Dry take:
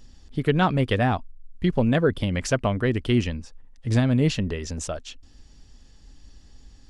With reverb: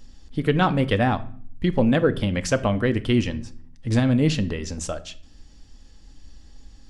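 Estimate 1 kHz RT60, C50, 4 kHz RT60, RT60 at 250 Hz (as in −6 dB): 0.45 s, 17.0 dB, 0.40 s, 0.85 s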